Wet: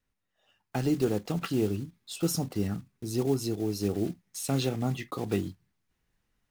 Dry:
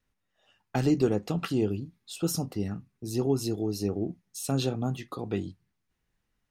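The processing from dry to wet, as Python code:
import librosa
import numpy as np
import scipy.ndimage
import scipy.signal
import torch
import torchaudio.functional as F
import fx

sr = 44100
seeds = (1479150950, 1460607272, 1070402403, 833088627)

p1 = fx.block_float(x, sr, bits=5)
p2 = fx.peak_eq(p1, sr, hz=2100.0, db=6.0, octaves=0.43, at=(4.25, 5.12))
p3 = fx.rider(p2, sr, range_db=5, speed_s=0.5)
p4 = p2 + F.gain(torch.from_numpy(p3), 3.0).numpy()
y = F.gain(torch.from_numpy(p4), -8.0).numpy()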